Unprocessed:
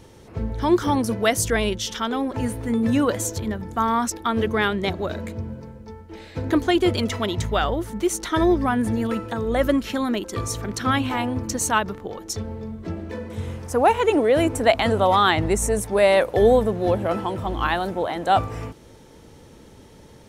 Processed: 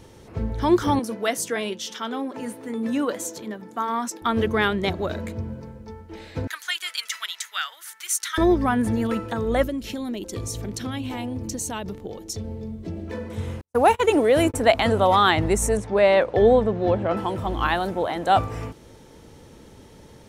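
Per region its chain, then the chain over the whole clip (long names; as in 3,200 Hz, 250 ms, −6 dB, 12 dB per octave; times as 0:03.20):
0:00.99–0:04.22: high-pass filter 190 Hz 24 dB per octave + flanger 1.3 Hz, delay 5.6 ms, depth 1.9 ms, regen −76%
0:06.47–0:08.38: upward compression, threshold −26 dBFS + Chebyshev high-pass filter 1,500 Hz, order 3 + high-shelf EQ 5,300 Hz +6.5 dB
0:09.63–0:13.08: parametric band 1,300 Hz −12 dB 1.3 octaves + downward compressor 4 to 1, threshold −26 dBFS
0:13.61–0:14.54: noise gate −24 dBFS, range −57 dB + high-shelf EQ 5,400 Hz +7 dB
0:15.77–0:17.17: high-pass filter 54 Hz + high-frequency loss of the air 120 metres
whole clip: no processing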